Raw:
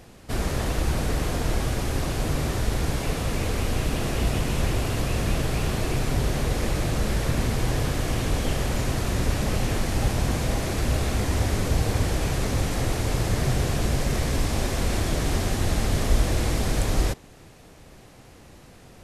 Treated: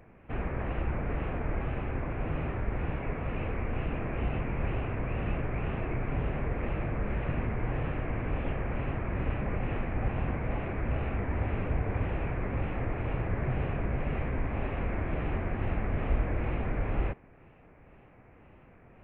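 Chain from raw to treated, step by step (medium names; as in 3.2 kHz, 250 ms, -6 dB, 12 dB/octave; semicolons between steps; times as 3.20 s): elliptic low-pass 2.5 kHz, stop band 50 dB; wow and flutter 95 cents; trim -6 dB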